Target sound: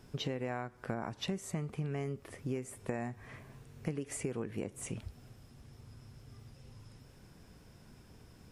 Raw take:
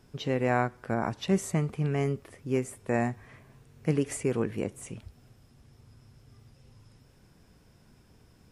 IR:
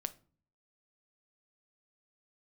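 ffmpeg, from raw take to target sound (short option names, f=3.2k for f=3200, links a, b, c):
-af "acompressor=threshold=-35dB:ratio=20,volume=2dB"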